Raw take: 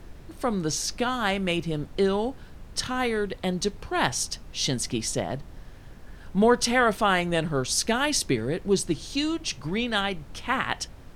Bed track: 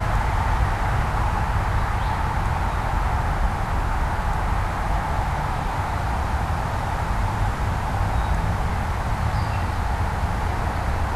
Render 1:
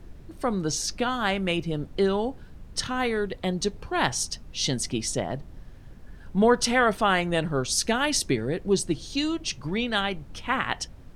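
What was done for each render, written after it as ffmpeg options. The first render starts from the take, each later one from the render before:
-af "afftdn=nr=6:nf=-46"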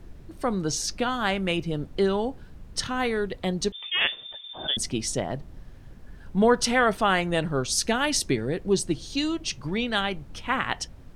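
-filter_complex "[0:a]asettb=1/sr,asplit=3[a][b][c];[a]atrim=end=3.724[d];[b]atrim=start=3.72:end=4.77,asetpts=PTS-STARTPTS,afade=t=in:d=0.004:c=qsin,afade=t=out:st=1.046:d=0.004:c=qsin,lowpass=f=3.1k:t=q:w=0.5098,lowpass=f=3.1k:t=q:w=0.6013,lowpass=f=3.1k:t=q:w=0.9,lowpass=f=3.1k:t=q:w=2.563,afreqshift=-3600[e];[c]atrim=start=4.766[f];[d][e]acrossfade=d=0.004:c1=hsin:c2=qsin[g];[g][f]acrossfade=d=0.004:c1=qsin:c2=hsin"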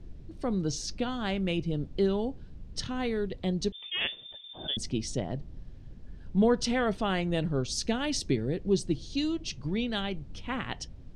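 -af "lowpass=4.8k,equalizer=f=1.3k:w=0.51:g=-11.5"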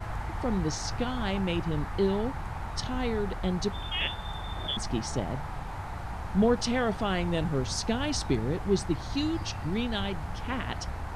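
-filter_complex "[1:a]volume=-13.5dB[a];[0:a][a]amix=inputs=2:normalize=0"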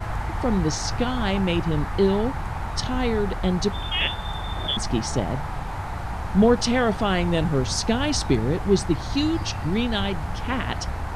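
-af "volume=6.5dB"

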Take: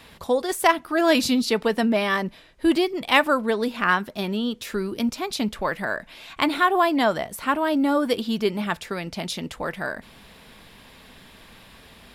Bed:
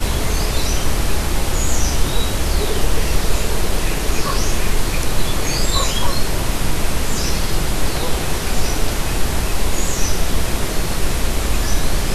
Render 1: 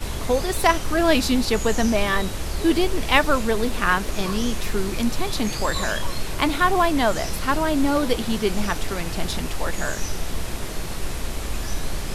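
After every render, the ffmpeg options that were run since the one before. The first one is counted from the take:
-filter_complex "[1:a]volume=-9.5dB[a];[0:a][a]amix=inputs=2:normalize=0"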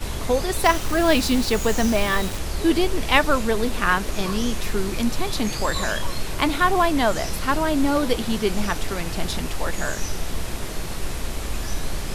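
-filter_complex "[0:a]asettb=1/sr,asplit=3[a][b][c];[a]atrim=end=0.644[d];[b]atrim=start=0.64:end=2.39,asetpts=PTS-STARTPTS,afade=t=in:d=0.004:c=qsin,afade=t=out:st=1.746:d=0.004:c=qsin,acrusher=bits=4:mix=0:aa=0.5[e];[c]atrim=start=2.386[f];[d][e]acrossfade=d=0.004:c1=hsin:c2=qsin[g];[g][f]acrossfade=d=0.004:c1=qsin:c2=hsin"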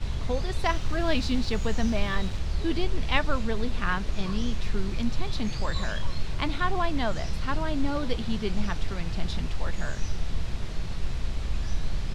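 -af "firequalizer=gain_entry='entry(120,0);entry(300,-10);entry(4000,-7);entry(12000,-28)':delay=0.05:min_phase=1"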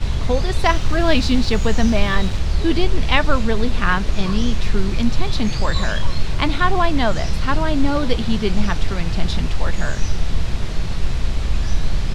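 -af "volume=9.5dB,alimiter=limit=-2dB:level=0:latency=1"

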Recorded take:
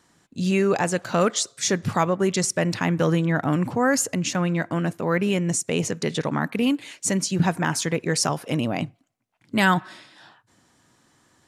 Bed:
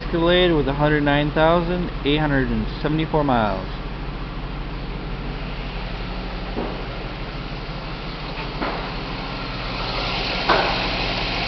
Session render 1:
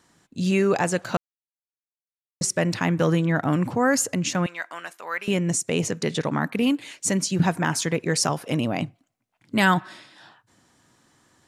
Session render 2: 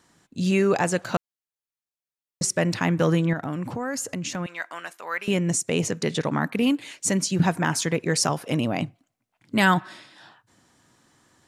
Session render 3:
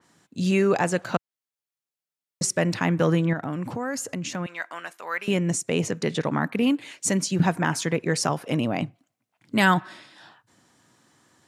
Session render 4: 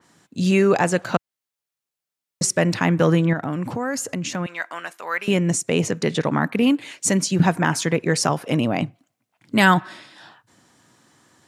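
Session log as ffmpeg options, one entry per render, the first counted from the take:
-filter_complex "[0:a]asettb=1/sr,asplit=3[a][b][c];[a]atrim=end=4.464[d];[b]atrim=start=4.46:end=5.28,asetpts=PTS-STARTPTS,afade=t=in:d=0.004:c=qsin,afade=t=out:st=0.816:d=0.004:c=qsin,highpass=1.1k[e];[c]atrim=start=5.276[f];[d][e]acrossfade=d=0.004:c1=hsin:c2=qsin[g];[g][f]acrossfade=d=0.004:c1=qsin:c2=hsin,asplit=3[h][i][j];[h]atrim=end=1.17,asetpts=PTS-STARTPTS,afade=t=out:st=1.166:d=0.004:c=hsin[k];[i]atrim=start=1.17:end=2.41,asetpts=PTS-STARTPTS,volume=0[l];[j]atrim=start=2.41,asetpts=PTS-STARTPTS,afade=t=in:d=0.004:c=hsin[m];[k][l][m]concat=n=3:v=0:a=1"
-filter_complex "[0:a]asettb=1/sr,asplit=3[a][b][c];[a]atrim=end=3.334[d];[b]atrim=start=3.33:end=4.6,asetpts=PTS-STARTPTS,afade=t=in:d=0.004:c=qsin,afade=t=out:st=1.266:d=0.004:c=qsin,acompressor=threshold=-28dB:ratio=3:attack=3.2:release=140:knee=1:detection=peak[e];[c]atrim=start=4.596[f];[d][e]acrossfade=d=0.004:c1=hsin:c2=qsin[g];[g][f]acrossfade=d=0.004:c1=qsin:c2=hsin"
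-af "highpass=91,adynamicequalizer=threshold=0.00794:dfrequency=3400:dqfactor=0.7:tfrequency=3400:tqfactor=0.7:attack=5:release=100:ratio=0.375:range=2.5:mode=cutabove:tftype=highshelf"
-af "volume=4dB"

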